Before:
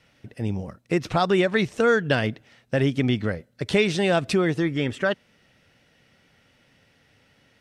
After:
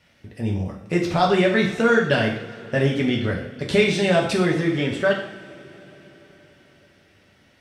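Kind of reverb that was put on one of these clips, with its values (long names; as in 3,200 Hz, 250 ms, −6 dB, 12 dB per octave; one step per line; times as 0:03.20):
coupled-rooms reverb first 0.6 s, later 4.8 s, from −22 dB, DRR −1.5 dB
level −1 dB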